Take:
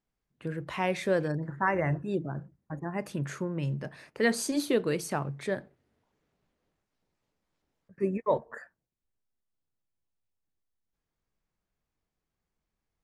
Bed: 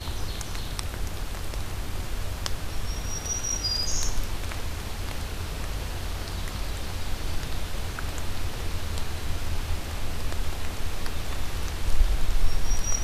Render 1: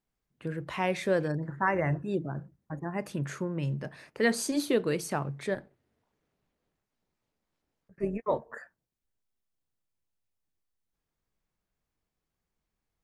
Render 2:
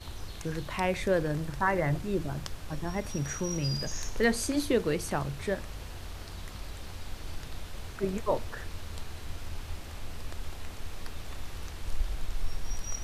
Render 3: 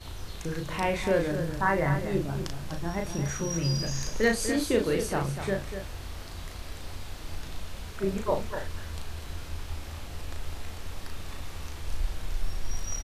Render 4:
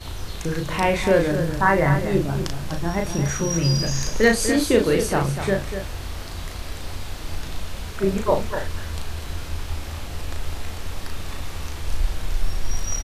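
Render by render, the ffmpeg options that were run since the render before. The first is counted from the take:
-filter_complex "[0:a]asettb=1/sr,asplit=3[s0][s1][s2];[s0]atrim=end=5.544[s3];[s1]atrim=start=5.54:end=8.38,asetpts=PTS-STARTPTS,afade=t=in:d=0.004:c=qsin,afade=t=out:st=2.836:d=0.004:c=qsin,tremolo=f=230:d=0.519[s4];[s2]atrim=start=8.376[s5];[s3][s4]acrossfade=d=0.004:c1=hsin:c2=qsin[s6];[s6][s5]acrossfade=d=0.004:c1=qsin:c2=hsin"
-filter_complex "[1:a]volume=0.335[s0];[0:a][s0]amix=inputs=2:normalize=0"
-filter_complex "[0:a]asplit=2[s0][s1];[s1]adelay=36,volume=0.631[s2];[s0][s2]amix=inputs=2:normalize=0,aecho=1:1:245:0.355"
-af "volume=2.37"

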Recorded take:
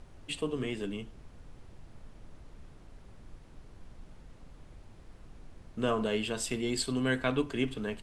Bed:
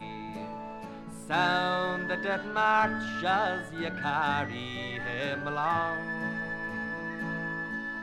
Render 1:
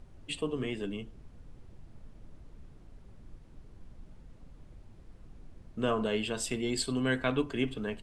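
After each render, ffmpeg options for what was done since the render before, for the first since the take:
-af "afftdn=nr=6:nf=-54"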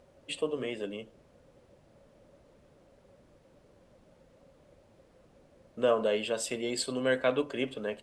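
-af "highpass=f=330:p=1,equalizer=f=550:t=o:w=0.35:g=14.5"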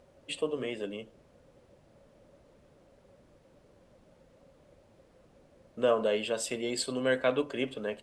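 -af anull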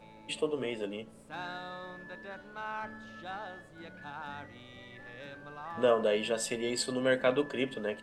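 -filter_complex "[1:a]volume=0.188[s0];[0:a][s0]amix=inputs=2:normalize=0"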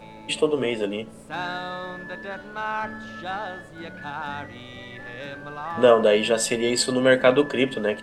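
-af "volume=3.35"

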